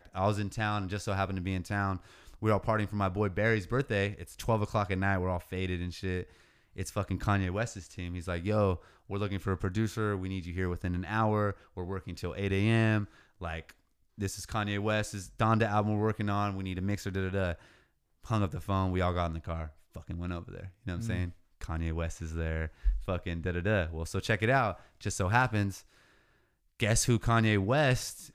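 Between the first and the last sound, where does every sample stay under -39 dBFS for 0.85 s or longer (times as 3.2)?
25.78–26.8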